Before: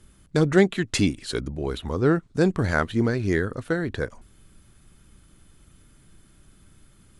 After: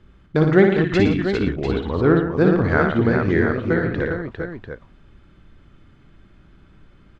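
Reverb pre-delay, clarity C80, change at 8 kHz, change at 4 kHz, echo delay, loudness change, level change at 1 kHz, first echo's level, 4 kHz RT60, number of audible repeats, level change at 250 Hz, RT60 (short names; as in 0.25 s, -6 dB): none, none, under -10 dB, -1.5 dB, 59 ms, +5.0 dB, +6.0 dB, -5.0 dB, none, 5, +5.5 dB, none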